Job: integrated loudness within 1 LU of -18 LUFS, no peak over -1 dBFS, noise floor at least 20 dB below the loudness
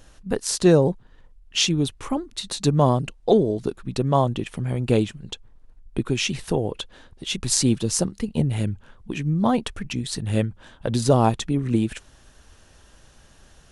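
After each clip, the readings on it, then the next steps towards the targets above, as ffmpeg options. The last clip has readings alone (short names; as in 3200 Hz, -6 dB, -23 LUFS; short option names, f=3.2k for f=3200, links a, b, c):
loudness -23.0 LUFS; peak -2.5 dBFS; loudness target -18.0 LUFS
-> -af "volume=5dB,alimiter=limit=-1dB:level=0:latency=1"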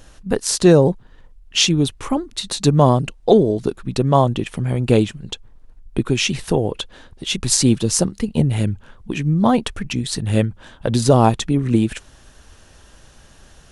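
loudness -18.5 LUFS; peak -1.0 dBFS; noise floor -49 dBFS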